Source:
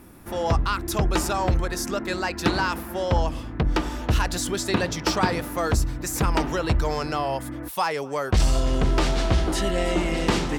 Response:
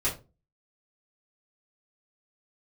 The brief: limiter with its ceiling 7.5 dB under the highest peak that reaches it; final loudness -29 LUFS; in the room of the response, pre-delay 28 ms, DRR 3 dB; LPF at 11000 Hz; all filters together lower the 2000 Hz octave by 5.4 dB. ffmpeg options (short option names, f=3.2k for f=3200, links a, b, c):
-filter_complex "[0:a]lowpass=11k,equalizer=f=2k:t=o:g=-7.5,alimiter=limit=-19dB:level=0:latency=1,asplit=2[a][b];[1:a]atrim=start_sample=2205,adelay=28[c];[b][c]afir=irnorm=-1:irlink=0,volume=-11.5dB[d];[a][d]amix=inputs=2:normalize=0,volume=-3dB"